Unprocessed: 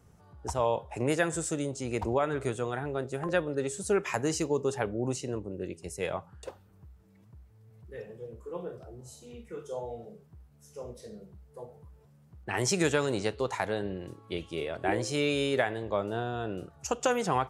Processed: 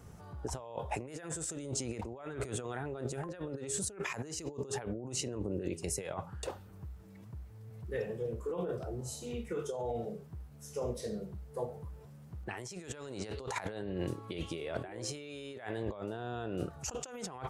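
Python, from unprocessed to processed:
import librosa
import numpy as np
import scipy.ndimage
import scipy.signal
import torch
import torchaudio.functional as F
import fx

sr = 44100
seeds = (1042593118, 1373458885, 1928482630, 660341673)

y = fx.over_compress(x, sr, threshold_db=-40.0, ratio=-1.0)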